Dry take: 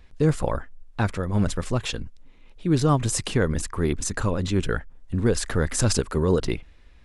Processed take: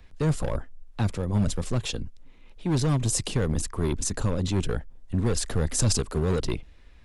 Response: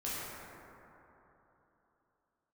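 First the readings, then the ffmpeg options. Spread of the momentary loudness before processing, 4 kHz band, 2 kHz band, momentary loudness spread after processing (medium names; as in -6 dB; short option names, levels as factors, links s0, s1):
10 LU, -1.0 dB, -7.0 dB, 10 LU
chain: -filter_complex "[0:a]acrossover=split=160|970|2600[s0][s1][s2][s3];[s1]asoftclip=type=hard:threshold=0.0531[s4];[s2]acompressor=threshold=0.00282:ratio=6[s5];[s0][s4][s5][s3]amix=inputs=4:normalize=0"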